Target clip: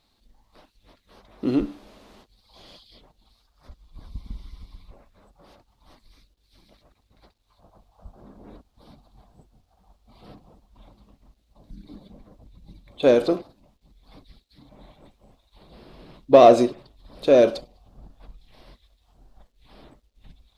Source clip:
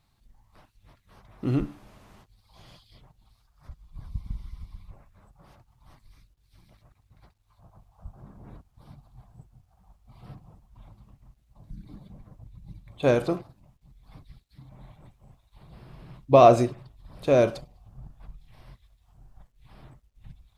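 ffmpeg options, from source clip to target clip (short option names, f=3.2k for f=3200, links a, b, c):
-filter_complex "[0:a]equalizer=f=125:t=o:w=1:g=-11,equalizer=f=250:t=o:w=1:g=7,equalizer=f=500:t=o:w=1:g=7,equalizer=f=4k:t=o:w=1:g=9,asplit=2[a][b];[b]asoftclip=type=tanh:threshold=-15.5dB,volume=-6.5dB[c];[a][c]amix=inputs=2:normalize=0,volume=-3.5dB"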